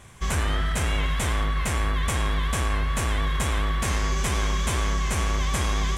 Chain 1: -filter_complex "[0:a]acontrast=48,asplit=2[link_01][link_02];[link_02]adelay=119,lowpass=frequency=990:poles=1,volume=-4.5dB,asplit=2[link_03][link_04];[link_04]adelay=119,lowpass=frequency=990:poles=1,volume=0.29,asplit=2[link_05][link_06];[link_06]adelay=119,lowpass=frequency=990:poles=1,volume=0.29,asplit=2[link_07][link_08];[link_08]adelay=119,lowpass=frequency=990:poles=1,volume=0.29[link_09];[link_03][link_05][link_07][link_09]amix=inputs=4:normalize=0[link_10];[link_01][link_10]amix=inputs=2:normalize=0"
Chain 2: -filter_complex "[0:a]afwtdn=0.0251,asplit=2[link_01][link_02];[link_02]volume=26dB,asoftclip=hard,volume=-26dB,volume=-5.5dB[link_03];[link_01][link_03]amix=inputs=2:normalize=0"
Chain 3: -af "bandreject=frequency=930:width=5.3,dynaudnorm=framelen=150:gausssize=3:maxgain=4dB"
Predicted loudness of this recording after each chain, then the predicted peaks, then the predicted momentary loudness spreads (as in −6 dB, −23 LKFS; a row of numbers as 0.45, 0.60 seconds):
−18.5, −24.0, −22.0 LKFS; −4.5, −11.5, −7.5 dBFS; 1, 0, 1 LU